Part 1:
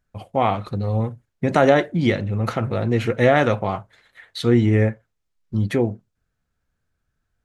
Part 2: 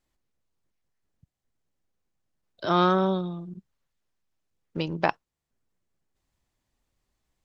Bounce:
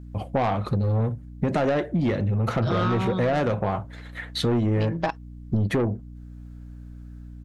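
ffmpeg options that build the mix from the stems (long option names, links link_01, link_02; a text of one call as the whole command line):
ffmpeg -i stem1.wav -i stem2.wav -filter_complex "[0:a]tiltshelf=frequency=1300:gain=3.5,dynaudnorm=framelen=130:gausssize=5:maxgain=12.5dB,aeval=exprs='val(0)+0.00891*(sin(2*PI*60*n/s)+sin(2*PI*2*60*n/s)/2+sin(2*PI*3*60*n/s)/3+sin(2*PI*4*60*n/s)/4+sin(2*PI*5*60*n/s)/5)':channel_layout=same,volume=2dB[link_01];[1:a]aecho=1:1:6.3:0.95,volume=2.5dB[link_02];[link_01][link_02]amix=inputs=2:normalize=0,asoftclip=type=tanh:threshold=-9.5dB,acompressor=threshold=-21dB:ratio=6" out.wav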